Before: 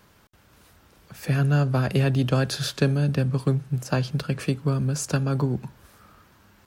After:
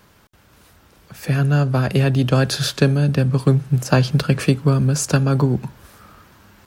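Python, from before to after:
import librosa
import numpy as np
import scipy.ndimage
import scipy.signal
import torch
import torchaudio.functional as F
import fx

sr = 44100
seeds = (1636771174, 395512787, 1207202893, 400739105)

y = fx.rider(x, sr, range_db=10, speed_s=0.5)
y = y * 10.0 ** (6.5 / 20.0)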